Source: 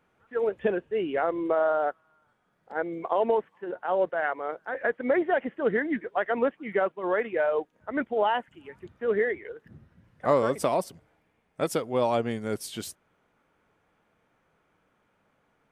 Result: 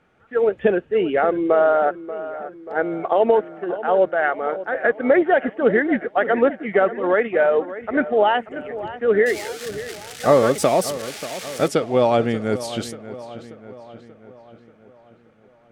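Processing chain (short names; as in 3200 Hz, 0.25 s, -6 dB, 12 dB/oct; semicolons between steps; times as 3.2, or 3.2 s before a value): 9.26–11.68 switching spikes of -25 dBFS; air absorption 53 m; notch 1000 Hz, Q 5.9; darkening echo 0.585 s, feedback 56%, low-pass 3600 Hz, level -14 dB; gain +8.5 dB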